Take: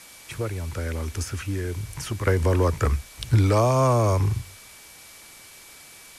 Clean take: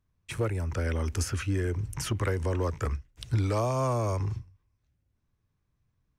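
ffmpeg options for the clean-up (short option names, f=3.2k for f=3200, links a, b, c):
-af "bandreject=f=2.3k:w=30,afwtdn=0.0056,asetnsamples=n=441:p=0,asendcmd='2.27 volume volume -8dB',volume=0dB"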